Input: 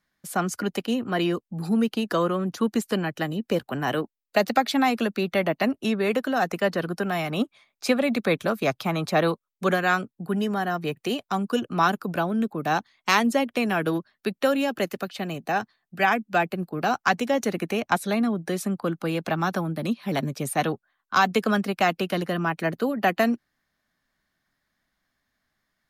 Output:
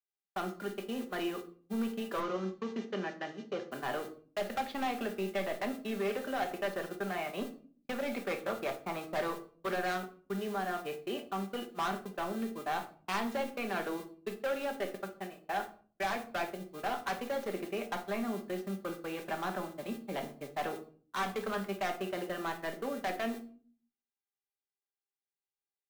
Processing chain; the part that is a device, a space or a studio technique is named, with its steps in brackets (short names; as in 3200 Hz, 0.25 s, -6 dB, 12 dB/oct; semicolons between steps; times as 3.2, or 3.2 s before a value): aircraft radio (BPF 310–2700 Hz; hard clip -22.5 dBFS, distortion -9 dB; buzz 400 Hz, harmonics 11, -49 dBFS -1 dB/oct; white noise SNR 17 dB; gate -32 dBFS, range -52 dB); 2.2–3.71 Chebyshev band-pass 130–6300 Hz, order 4; shoebox room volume 380 m³, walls furnished, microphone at 1.2 m; gain -9 dB